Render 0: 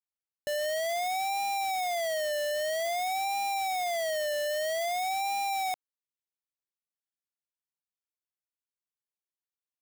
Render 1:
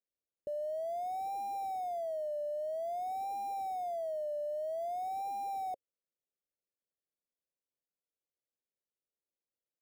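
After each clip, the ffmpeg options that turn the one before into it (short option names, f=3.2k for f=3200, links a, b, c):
-af "firequalizer=gain_entry='entry(120,0);entry(540,10);entry(1200,-29);entry(2300,-23);entry(9300,-17)':delay=0.05:min_phase=1,alimiter=level_in=8dB:limit=-24dB:level=0:latency=1,volume=-8dB,volume=-1.5dB"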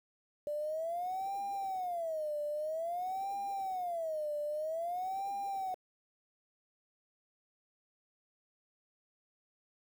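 -af "aeval=exprs='val(0)*gte(abs(val(0)),0.00266)':c=same"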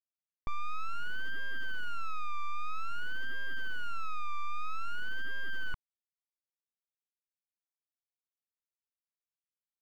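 -af "aeval=exprs='abs(val(0))':c=same,lowpass=f=1.4k:p=1,asoftclip=type=tanh:threshold=-36dB,volume=11dB"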